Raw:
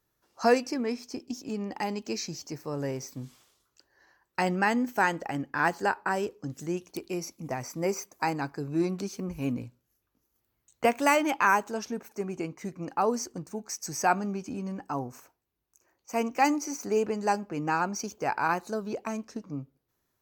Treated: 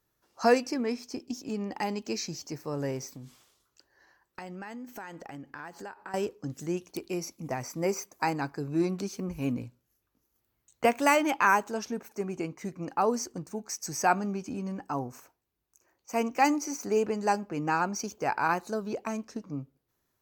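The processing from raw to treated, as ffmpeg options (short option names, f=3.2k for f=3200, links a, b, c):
-filter_complex "[0:a]asettb=1/sr,asplit=3[a][b][c];[a]atrim=end=3.074[d];[b]atrim=start=3.07:end=6.14,asetpts=PTS-STARTPTS,afade=t=in:d=0.004:c=qsin,afade=t=out:st=3.066:d=0.004:c=qsin,acompressor=threshold=-40dB:ratio=5:attack=3.2:release=140:knee=1:detection=peak[e];[c]atrim=start=6.136[f];[d][e]acrossfade=d=0.004:c1=hsin:c2=qsin[g];[g][f]acrossfade=d=0.004:c1=qsin:c2=hsin"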